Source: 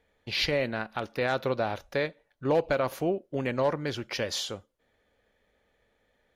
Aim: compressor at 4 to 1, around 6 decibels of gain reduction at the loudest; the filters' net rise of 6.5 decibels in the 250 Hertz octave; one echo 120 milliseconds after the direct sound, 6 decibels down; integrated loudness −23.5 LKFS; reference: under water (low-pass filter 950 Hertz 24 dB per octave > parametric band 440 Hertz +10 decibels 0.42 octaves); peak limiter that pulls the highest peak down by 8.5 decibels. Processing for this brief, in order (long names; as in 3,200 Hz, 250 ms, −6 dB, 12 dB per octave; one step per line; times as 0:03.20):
parametric band 250 Hz +6.5 dB
downward compressor 4 to 1, threshold −26 dBFS
brickwall limiter −24 dBFS
low-pass filter 950 Hz 24 dB per octave
parametric band 440 Hz +10 dB 0.42 octaves
single-tap delay 120 ms −6 dB
level +8.5 dB